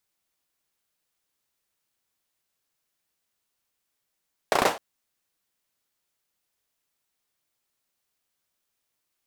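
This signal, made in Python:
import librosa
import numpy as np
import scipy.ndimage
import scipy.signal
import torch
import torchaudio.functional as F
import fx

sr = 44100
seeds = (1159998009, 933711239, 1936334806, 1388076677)

y = fx.drum_clap(sr, seeds[0], length_s=0.26, bursts=5, spacing_ms=33, hz=640.0, decay_s=0.29)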